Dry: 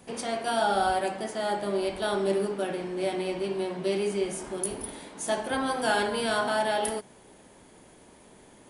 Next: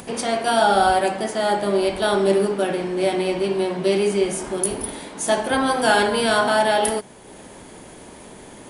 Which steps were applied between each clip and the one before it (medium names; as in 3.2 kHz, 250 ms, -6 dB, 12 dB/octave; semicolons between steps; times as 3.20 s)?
upward compressor, threshold -43 dBFS; trim +8.5 dB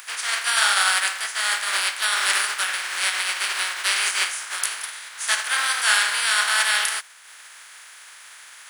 spectral contrast reduction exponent 0.42; resonant high-pass 1.5 kHz, resonance Q 2; trim -3 dB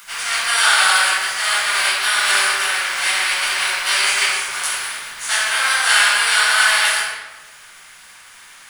in parallel at -4 dB: bit crusher 6-bit; on the sum: simulated room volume 790 m³, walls mixed, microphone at 7.3 m; trim -11 dB